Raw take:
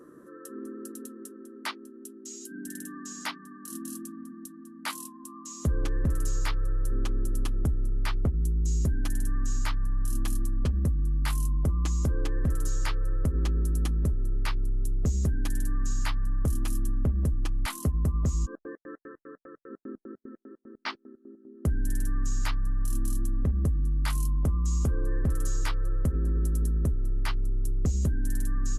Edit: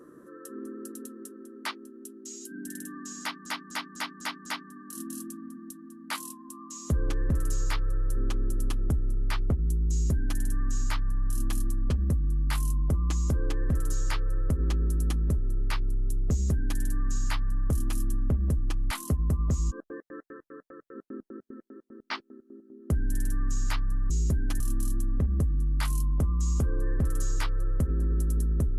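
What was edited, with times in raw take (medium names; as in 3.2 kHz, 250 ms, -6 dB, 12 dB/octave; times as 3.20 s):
3.21–3.46 s: loop, 6 plays
8.65–9.15 s: copy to 22.85 s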